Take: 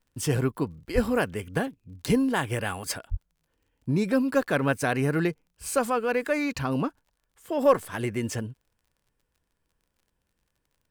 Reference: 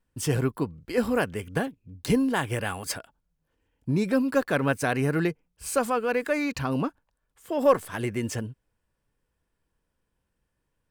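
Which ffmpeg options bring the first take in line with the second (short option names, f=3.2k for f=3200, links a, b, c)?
-filter_complex "[0:a]adeclick=t=4,asplit=3[a][b][c];[a]afade=t=out:st=0.94:d=0.02[d];[b]highpass=f=140:w=0.5412,highpass=f=140:w=1.3066,afade=t=in:st=0.94:d=0.02,afade=t=out:st=1.06:d=0.02[e];[c]afade=t=in:st=1.06:d=0.02[f];[d][e][f]amix=inputs=3:normalize=0,asplit=3[g][h][i];[g]afade=t=out:st=3.1:d=0.02[j];[h]highpass=f=140:w=0.5412,highpass=f=140:w=1.3066,afade=t=in:st=3.1:d=0.02,afade=t=out:st=3.22:d=0.02[k];[i]afade=t=in:st=3.22:d=0.02[l];[j][k][l]amix=inputs=3:normalize=0"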